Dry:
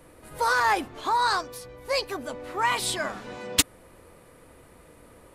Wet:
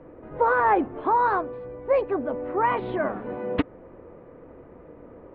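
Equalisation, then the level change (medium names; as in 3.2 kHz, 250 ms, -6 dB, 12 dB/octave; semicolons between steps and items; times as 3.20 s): Gaussian low-pass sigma 4.1 samples; distance through air 120 m; peaking EQ 370 Hz +8.5 dB 2.3 oct; +1.0 dB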